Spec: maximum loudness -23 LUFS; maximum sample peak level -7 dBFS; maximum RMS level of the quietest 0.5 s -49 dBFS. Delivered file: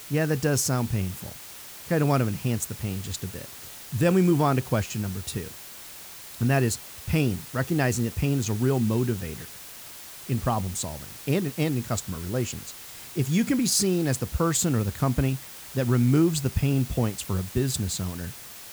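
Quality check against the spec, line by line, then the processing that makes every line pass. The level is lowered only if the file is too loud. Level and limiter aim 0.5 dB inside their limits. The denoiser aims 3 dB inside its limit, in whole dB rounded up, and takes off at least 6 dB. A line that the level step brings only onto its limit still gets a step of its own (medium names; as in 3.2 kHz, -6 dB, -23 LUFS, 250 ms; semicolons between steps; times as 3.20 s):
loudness -26.0 LUFS: pass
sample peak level -9.5 dBFS: pass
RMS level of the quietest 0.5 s -43 dBFS: fail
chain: noise reduction 9 dB, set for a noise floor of -43 dBFS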